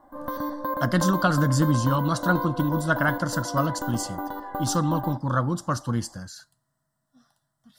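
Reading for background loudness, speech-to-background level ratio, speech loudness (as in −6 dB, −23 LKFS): −32.0 LKFS, 7.0 dB, −25.0 LKFS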